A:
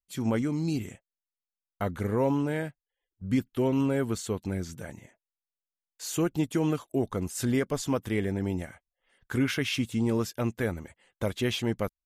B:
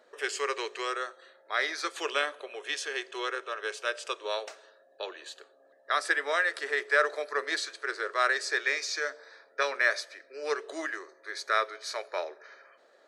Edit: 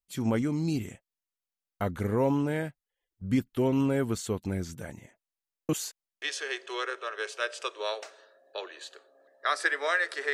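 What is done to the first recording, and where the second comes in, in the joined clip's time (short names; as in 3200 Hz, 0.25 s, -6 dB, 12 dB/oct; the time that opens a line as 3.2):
A
5.69–6.22 reverse
6.22 switch to B from 2.67 s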